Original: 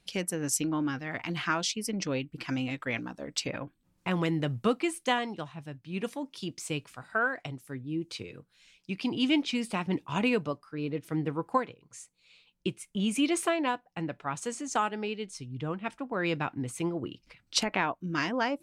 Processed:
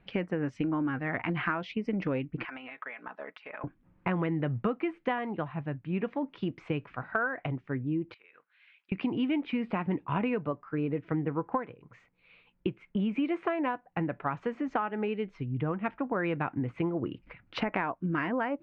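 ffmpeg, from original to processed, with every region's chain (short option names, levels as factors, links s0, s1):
-filter_complex "[0:a]asettb=1/sr,asplit=3[s0][s1][s2];[s0]atrim=end=2.454[s3];[s1]atrim=start=2.45:end=3.64,asetpts=PTS-STARTPTS,afade=t=in:d=0.004:c=qsin,afade=t=out:st=1.186:d=0.004:c=qsin,highpass=730,aecho=1:1:4.7:0.41,atrim=end_sample=52479,acompressor=threshold=0.00794:ratio=20:attack=3.2:release=140:knee=1:detection=peak[s4];[s2]atrim=start=3.636[s5];[s3][s4]acrossfade=d=0.004:c1=hsin:c2=qsin[s6];[s6][s5]acrossfade=d=0.004:c1=qsin:c2=hsin,asettb=1/sr,asplit=3[s7][s8][s9];[s7]atrim=end=8.144[s10];[s8]atrim=start=8.14:end=8.92,asetpts=PTS-STARTPTS,afade=t=in:d=0.004:c=qsin,afade=t=out:st=0.776:d=0.004:c=qsin,highpass=1500,equalizer=f=6000:w=3:g=-7.5,acompressor=threshold=0.002:ratio=16:attack=3.2:release=140:knee=1:detection=peak[s11];[s9]atrim=start=8.916[s12];[s10][s11]acrossfade=d=0.004:c1=hsin:c2=qsin[s13];[s13][s12]acrossfade=d=0.004:c1=qsin:c2=hsin,lowpass=f=2200:w=0.5412,lowpass=f=2200:w=1.3066,acompressor=threshold=0.0178:ratio=5,volume=2.37"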